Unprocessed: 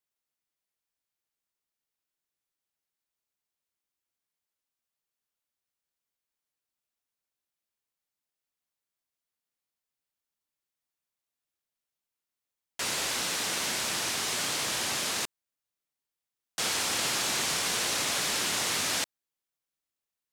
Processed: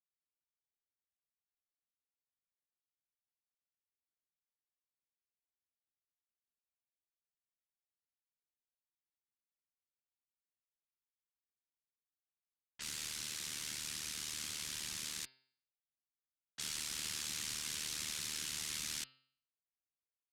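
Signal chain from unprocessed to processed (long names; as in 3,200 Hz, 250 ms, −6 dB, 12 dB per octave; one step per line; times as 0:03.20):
low-pass that shuts in the quiet parts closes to 2,000 Hz, open at −29.5 dBFS
ring modulation 38 Hz
guitar amp tone stack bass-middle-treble 6-0-2
hum removal 131.2 Hz, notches 38
level +7 dB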